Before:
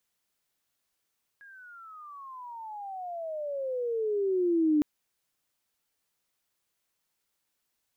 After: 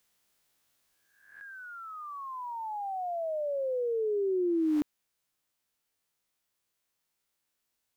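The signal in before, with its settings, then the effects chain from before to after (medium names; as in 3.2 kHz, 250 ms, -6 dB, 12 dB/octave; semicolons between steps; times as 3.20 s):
gliding synth tone sine, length 3.41 s, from 1.66 kHz, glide -30 st, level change +28 dB, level -20 dB
reverse spectral sustain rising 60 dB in 0.70 s; gain riding within 4 dB 2 s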